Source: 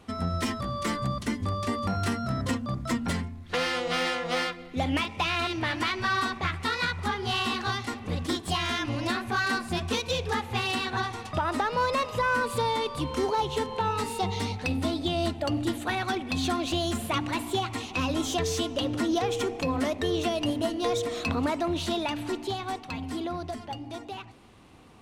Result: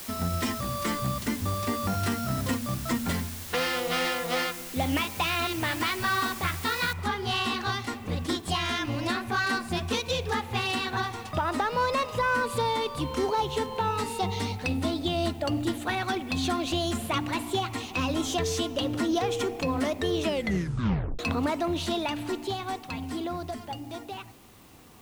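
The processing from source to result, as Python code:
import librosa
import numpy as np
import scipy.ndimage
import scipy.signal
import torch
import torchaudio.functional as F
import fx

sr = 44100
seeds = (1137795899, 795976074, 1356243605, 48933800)

y = fx.noise_floor_step(x, sr, seeds[0], at_s=6.93, before_db=-41, after_db=-59, tilt_db=0.0)
y = fx.edit(y, sr, fx.tape_stop(start_s=20.2, length_s=0.99), tone=tone)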